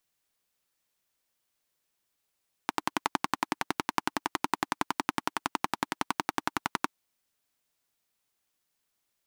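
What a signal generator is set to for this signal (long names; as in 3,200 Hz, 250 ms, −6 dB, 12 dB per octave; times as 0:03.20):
pulse-train model of a single-cylinder engine, steady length 4.19 s, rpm 1,300, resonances 300/920 Hz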